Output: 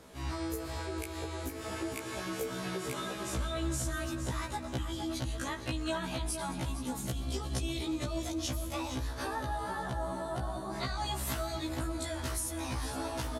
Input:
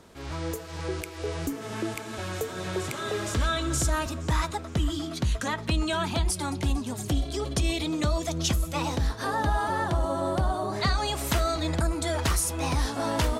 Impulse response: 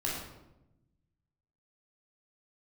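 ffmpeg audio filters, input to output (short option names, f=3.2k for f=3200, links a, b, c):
-filter_complex "[0:a]equalizer=f=11k:t=o:w=0.37:g=6,asplit=2[a][b];[b]adelay=460.6,volume=-7dB,highshelf=f=4k:g=-10.4[c];[a][c]amix=inputs=2:normalize=0,acompressor=threshold=-32dB:ratio=6,asplit=2[d][e];[1:a]atrim=start_sample=2205,asetrate=37044,aresample=44100,adelay=120[f];[e][f]afir=irnorm=-1:irlink=0,volume=-20dB[g];[d][g]amix=inputs=2:normalize=0,afftfilt=real='re*1.73*eq(mod(b,3),0)':imag='im*1.73*eq(mod(b,3),0)':win_size=2048:overlap=0.75,volume=1.5dB"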